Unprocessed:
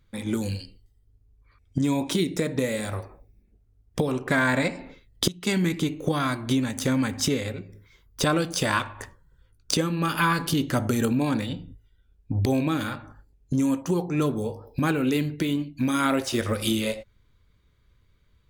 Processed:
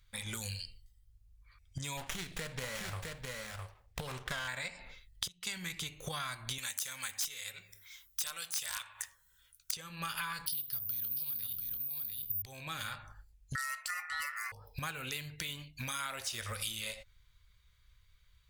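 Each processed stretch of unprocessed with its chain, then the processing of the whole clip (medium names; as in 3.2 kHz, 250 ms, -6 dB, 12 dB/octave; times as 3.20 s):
1.97–4.48 s: delay 659 ms -6 dB + sliding maximum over 9 samples
6.58–9.72 s: tilt EQ +3.5 dB/octave + band-stop 4.6 kHz, Q 11 + integer overflow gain 10 dB
10.46–12.42 s: FFT filter 290 Hz 0 dB, 450 Hz -9 dB, 2 kHz -8 dB, 5.1 kHz +10 dB, 7.7 kHz -19 dB + delay 691 ms -9 dB + careless resampling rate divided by 3×, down filtered, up zero stuff
13.55–14.52 s: treble shelf 3.3 kHz +11.5 dB + ring modulator 1.6 kHz
whole clip: amplifier tone stack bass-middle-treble 10-0-10; compression 6:1, threshold -40 dBFS; trim +4 dB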